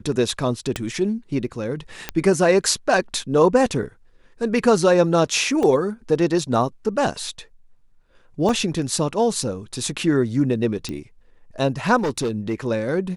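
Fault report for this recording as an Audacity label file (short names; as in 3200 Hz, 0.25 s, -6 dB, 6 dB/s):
0.760000	0.760000	pop -10 dBFS
2.090000	2.090000	pop -8 dBFS
5.630000	5.630000	gap 2 ms
8.490000	8.490000	gap 2.5 ms
10.890000	10.890000	pop -16 dBFS
11.990000	12.540000	clipped -18.5 dBFS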